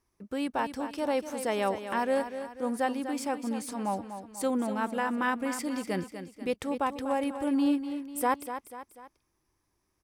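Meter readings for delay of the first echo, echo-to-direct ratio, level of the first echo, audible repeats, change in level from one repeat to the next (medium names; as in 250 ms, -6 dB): 245 ms, -9.0 dB, -10.0 dB, 3, -6.5 dB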